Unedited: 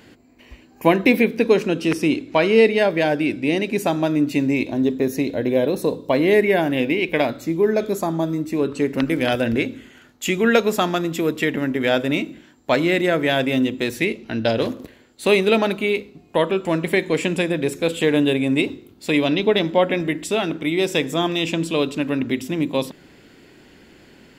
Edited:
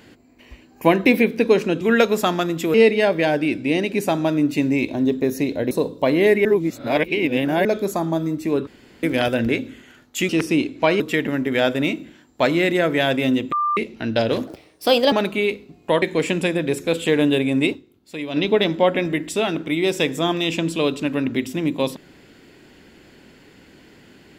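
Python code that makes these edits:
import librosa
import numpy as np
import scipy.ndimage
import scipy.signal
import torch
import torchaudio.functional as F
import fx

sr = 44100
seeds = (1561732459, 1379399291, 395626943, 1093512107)

y = fx.edit(x, sr, fx.swap(start_s=1.81, length_s=0.71, other_s=10.36, other_length_s=0.93),
    fx.cut(start_s=5.49, length_s=0.29),
    fx.reverse_span(start_s=6.52, length_s=1.2),
    fx.room_tone_fill(start_s=8.74, length_s=0.36),
    fx.bleep(start_s=13.81, length_s=0.25, hz=1190.0, db=-17.5),
    fx.speed_span(start_s=14.76, length_s=0.82, speed=1.26),
    fx.cut(start_s=16.48, length_s=0.49),
    fx.fade_down_up(start_s=18.67, length_s=0.65, db=-11.0, fade_s=0.29, curve='exp'), tone=tone)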